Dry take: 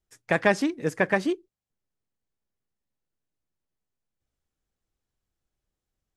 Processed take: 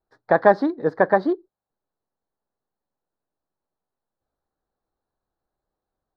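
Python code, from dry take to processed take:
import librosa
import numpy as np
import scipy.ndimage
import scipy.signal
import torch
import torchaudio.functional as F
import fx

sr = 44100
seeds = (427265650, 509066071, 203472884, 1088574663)

y = scipy.ndimage.median_filter(x, 3, mode='constant')
y = fx.curve_eq(y, sr, hz=(110.0, 830.0, 1700.0, 2700.0, 4100.0, 7000.0), db=(0, 14, 5, -21, 4, -27))
y = y * librosa.db_to_amplitude(-3.5)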